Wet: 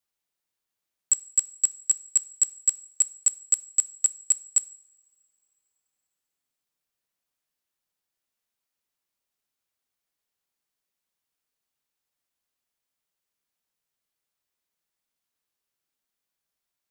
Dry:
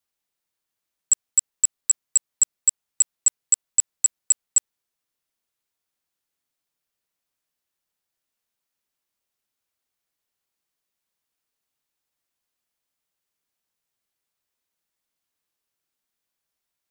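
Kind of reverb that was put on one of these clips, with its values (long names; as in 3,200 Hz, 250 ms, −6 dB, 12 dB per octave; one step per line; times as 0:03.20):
coupled-rooms reverb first 0.51 s, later 2.7 s, from −22 dB, DRR 15 dB
level −2.5 dB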